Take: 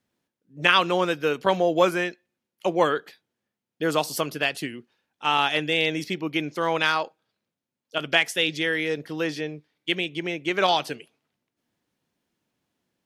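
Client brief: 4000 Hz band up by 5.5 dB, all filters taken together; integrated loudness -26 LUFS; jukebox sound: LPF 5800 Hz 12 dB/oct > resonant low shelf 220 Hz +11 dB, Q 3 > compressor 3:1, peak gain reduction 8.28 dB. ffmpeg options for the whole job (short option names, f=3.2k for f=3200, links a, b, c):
-af "lowpass=5.8k,lowshelf=f=220:t=q:w=3:g=11,equalizer=f=4k:t=o:g=8,acompressor=threshold=-21dB:ratio=3,volume=-1dB"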